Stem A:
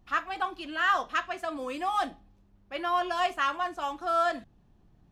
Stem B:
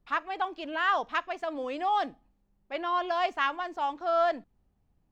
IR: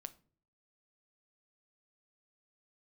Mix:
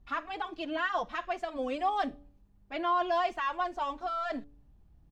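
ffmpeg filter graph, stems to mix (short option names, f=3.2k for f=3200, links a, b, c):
-filter_complex "[0:a]lowpass=7.6k,alimiter=level_in=1dB:limit=-24dB:level=0:latency=1,volume=-1dB,volume=-9dB[a];[1:a]alimiter=limit=-22.5dB:level=0:latency=1:release=21,bandreject=f=143.8:t=h:w=4,bandreject=f=287.6:t=h:w=4,bandreject=f=431.4:t=h:w=4,bandreject=f=575.2:t=h:w=4,asplit=2[b][c];[c]adelay=4.6,afreqshift=0.45[d];[b][d]amix=inputs=2:normalize=1,adelay=1.1,volume=2dB[e];[a][e]amix=inputs=2:normalize=0,lowshelf=f=110:g=11"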